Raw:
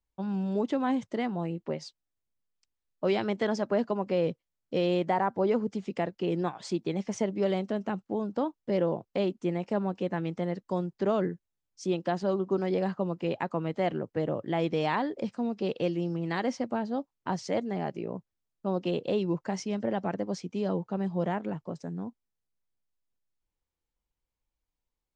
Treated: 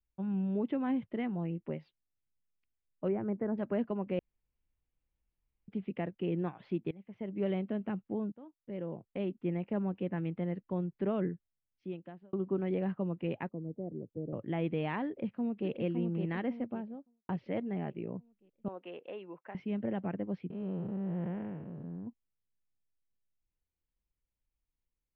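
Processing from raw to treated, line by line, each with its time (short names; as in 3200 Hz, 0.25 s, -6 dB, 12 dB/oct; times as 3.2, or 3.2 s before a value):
3.08–3.58 Gaussian blur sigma 5.8 samples
4.19–5.68 room tone
6.91–7.43 fade in quadratic, from -18.5 dB
8.32–9.54 fade in, from -23.5 dB
11.33–12.33 fade out
13.49–14.33 ladder low-pass 600 Hz, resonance 25%
15.08–15.69 echo throw 0.56 s, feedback 45%, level -5 dB
16.43–17.29 studio fade out
18.68–19.55 BPF 690–2500 Hz
20.5–22.07 time blur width 0.313 s
whole clip: steep low-pass 2800 Hz 36 dB/oct; bell 940 Hz -10 dB 2.7 oct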